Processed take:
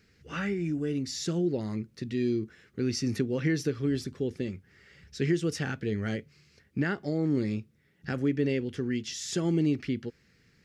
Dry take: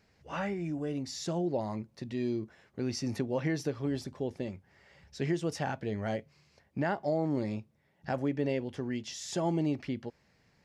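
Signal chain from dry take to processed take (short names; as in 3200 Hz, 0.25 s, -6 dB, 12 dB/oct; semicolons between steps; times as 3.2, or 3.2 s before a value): band shelf 770 Hz -14 dB 1.1 oct; gain +4.5 dB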